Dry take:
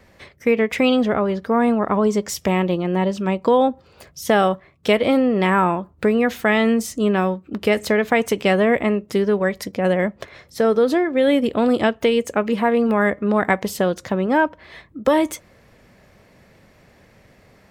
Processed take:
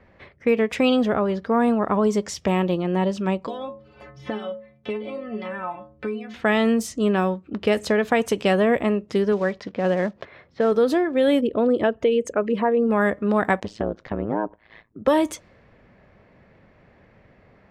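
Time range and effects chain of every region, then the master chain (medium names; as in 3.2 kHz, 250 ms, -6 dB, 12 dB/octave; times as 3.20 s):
3.47–6.34 s: inharmonic resonator 64 Hz, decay 0.73 s, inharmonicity 0.03 + three bands compressed up and down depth 100%
9.32–10.72 s: block-companded coder 5-bit + high-pass 120 Hz 6 dB/octave + distance through air 140 m
11.41–12.92 s: resonances exaggerated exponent 1.5 + band-stop 780 Hz, Q 7.1
13.60–15.02 s: gate -45 dBFS, range -7 dB + low-pass that closes with the level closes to 830 Hz, closed at -14.5 dBFS + AM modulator 110 Hz, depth 100%
whole clip: level-controlled noise filter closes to 2.3 kHz, open at -15 dBFS; dynamic bell 2.1 kHz, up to -7 dB, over -44 dBFS, Q 7.5; trim -2 dB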